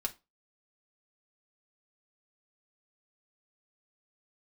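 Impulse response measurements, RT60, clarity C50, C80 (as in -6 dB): 0.25 s, 19.0 dB, 27.0 dB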